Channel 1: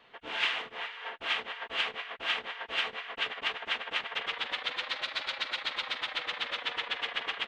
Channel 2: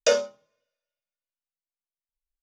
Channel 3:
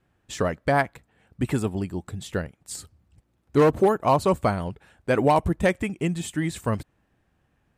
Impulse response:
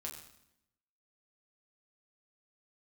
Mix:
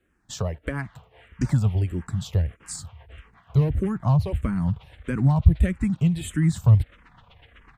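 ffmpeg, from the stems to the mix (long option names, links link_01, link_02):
-filter_complex "[0:a]acrossover=split=160[link_01][link_02];[link_02]acompressor=threshold=-37dB:ratio=5[link_03];[link_01][link_03]amix=inputs=2:normalize=0,equalizer=frequency=4300:width_type=o:width=2.6:gain=-13.5,adelay=400,volume=-3.5dB[link_04];[1:a]adelay=1350,volume=-9.5dB[link_05];[2:a]acrossover=split=220[link_06][link_07];[link_07]acompressor=threshold=-30dB:ratio=4[link_08];[link_06][link_08]amix=inputs=2:normalize=0,volume=2.5dB,asplit=2[link_09][link_10];[link_10]apad=whole_len=166584[link_11];[link_05][link_11]sidechaincompress=threshold=-28dB:ratio=8:attack=7:release=390[link_12];[link_04][link_12][link_09]amix=inputs=3:normalize=0,asubboost=boost=7:cutoff=150,asplit=2[link_13][link_14];[link_14]afreqshift=-1.6[link_15];[link_13][link_15]amix=inputs=2:normalize=1"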